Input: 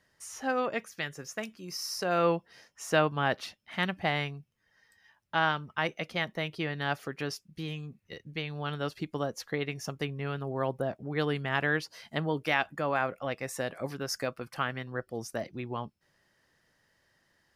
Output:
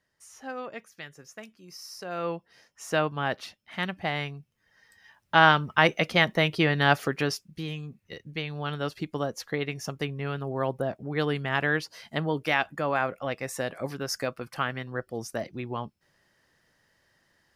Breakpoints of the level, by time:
0:02.06 −7 dB
0:02.86 −0.5 dB
0:04.10 −0.5 dB
0:05.55 +10 dB
0:07.04 +10 dB
0:07.64 +2.5 dB

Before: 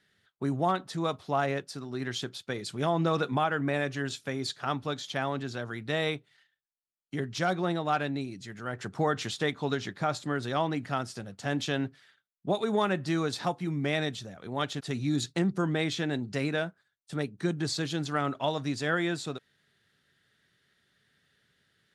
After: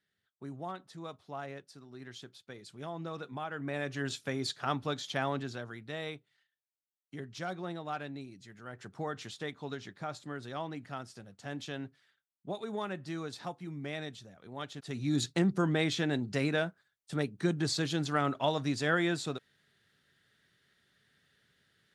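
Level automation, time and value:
0:03.32 −13.5 dB
0:04.10 −1.5 dB
0:05.35 −1.5 dB
0:05.90 −10 dB
0:14.73 −10 dB
0:15.19 −0.5 dB

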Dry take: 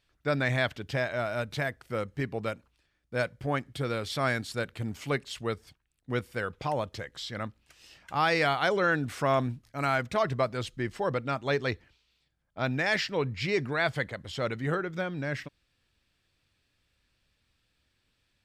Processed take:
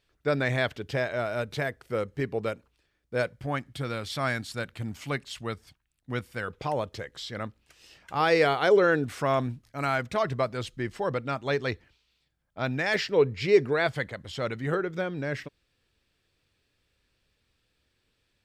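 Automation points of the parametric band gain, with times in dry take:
parametric band 430 Hz 0.64 octaves
+6 dB
from 0:03.34 −4.5 dB
from 0:06.48 +4 dB
from 0:08.20 +11 dB
from 0:09.04 +1 dB
from 0:12.94 +10.5 dB
from 0:13.87 +0.5 dB
from 0:14.73 +6.5 dB

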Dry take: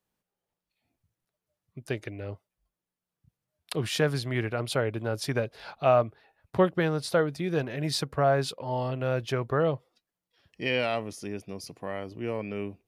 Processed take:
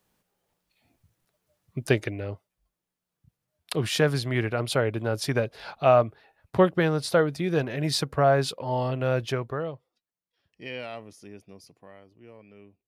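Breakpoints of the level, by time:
0:01.88 +10.5 dB
0:02.29 +3 dB
0:09.26 +3 dB
0:09.73 −9 dB
0:11.54 −9 dB
0:12.11 −17 dB

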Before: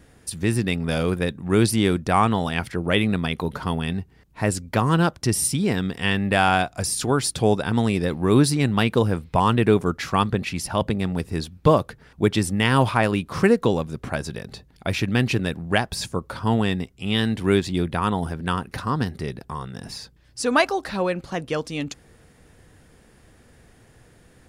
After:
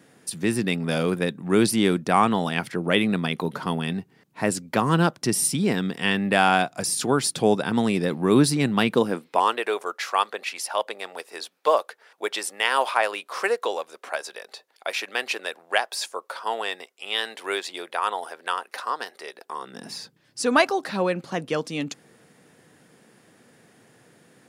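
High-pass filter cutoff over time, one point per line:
high-pass filter 24 dB per octave
0:08.92 150 Hz
0:09.64 510 Hz
0:19.33 510 Hz
0:19.99 150 Hz

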